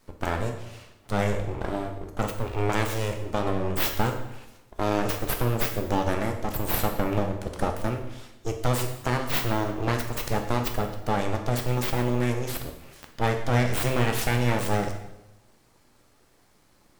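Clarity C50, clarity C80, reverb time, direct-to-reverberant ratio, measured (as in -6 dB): 7.5 dB, 10.0 dB, 0.95 s, 4.0 dB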